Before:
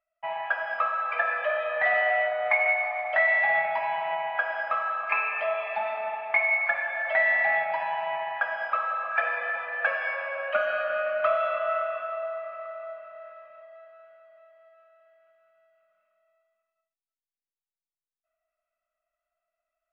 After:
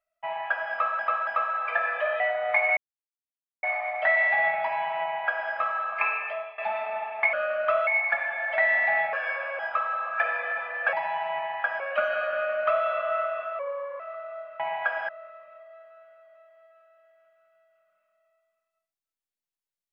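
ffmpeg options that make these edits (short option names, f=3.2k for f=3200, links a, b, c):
-filter_complex "[0:a]asplit=16[a][b][c][d][e][f][g][h][i][j][k][l][m][n][o][p];[a]atrim=end=0.992[q];[b]atrim=start=0.708:end=0.992[r];[c]atrim=start=0.708:end=1.642[s];[d]atrim=start=2.168:end=2.74,asetpts=PTS-STARTPTS,afade=t=out:st=0.568:d=0.004:c=hsin,apad=pad_dur=0.86[t];[e]atrim=start=2.74:end=5.69,asetpts=PTS-STARTPTS,afade=t=in:d=0.004:c=hsin,afade=t=out:st=2.49:d=0.46:silence=0.141254[u];[f]atrim=start=5.69:end=6.442,asetpts=PTS-STARTPTS,afade=t=in:d=0.004:c=hsin:silence=0.141254[v];[g]atrim=start=10.888:end=11.432[w];[h]atrim=start=6.438:end=7.702[x];[i]atrim=start=9.908:end=10.372[y];[j]atrim=start=8.568:end=9.912[z];[k]atrim=start=7.698:end=8.572[aa];[l]atrim=start=10.368:end=12.164[ab];[m]atrim=start=12.16:end=12.51,asetpts=PTS-STARTPTS,asetrate=37926,aresample=44100[ac];[n]atrim=start=12.506:end=13.112[ad];[o]atrim=start=4.128:end=4.622[ae];[p]atrim=start=13.108[af];[q][r]acrossfade=d=0.004:c1=hsin:c2=hsin[ag];[ag][s]acrossfade=d=0.004:c1=hsin:c2=hsin[ah];[t][u][v]concat=n=3:v=0:a=1[ai];[ah][ai]acrossfade=d=0.004:c1=hsin:c2=hsin[aj];[aj][w]acrossfade=d=0.004:c1=hsin:c2=hsin[ak];[ak][x]acrossfade=d=0.004:c1=hsin:c2=hsin[al];[al][y]acrossfade=d=0.004:c1=hsin:c2=hsin[am];[am][z]acrossfade=d=0.004:c1=hsin:c2=hsin[an];[an][aa]acrossfade=d=0.004:c1=hsin:c2=hsin[ao];[ao][ab]acrossfade=d=0.004:c1=hsin:c2=hsin[ap];[ap][ac]acrossfade=d=0.004:c1=hsin:c2=hsin[aq];[aq][ad]acrossfade=d=0.004:c1=hsin:c2=hsin[ar];[ar][ae]acrossfade=d=0.004:c1=hsin:c2=hsin[as];[as][af]acrossfade=d=0.004:c1=hsin:c2=hsin"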